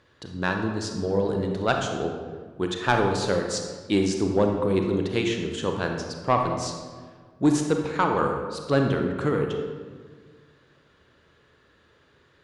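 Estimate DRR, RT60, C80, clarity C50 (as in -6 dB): 2.5 dB, 1.6 s, 6.0 dB, 4.0 dB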